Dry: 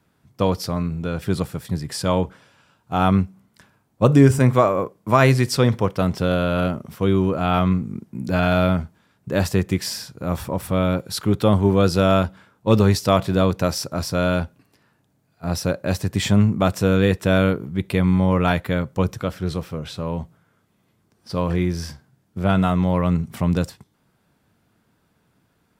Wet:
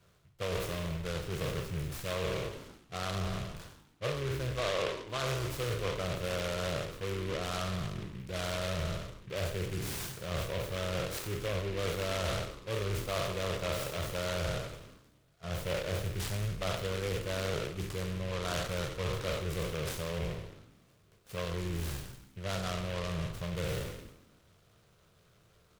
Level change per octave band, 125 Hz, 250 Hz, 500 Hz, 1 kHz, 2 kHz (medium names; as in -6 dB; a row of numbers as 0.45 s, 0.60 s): -15.5 dB, -21.0 dB, -13.5 dB, -15.5 dB, -10.5 dB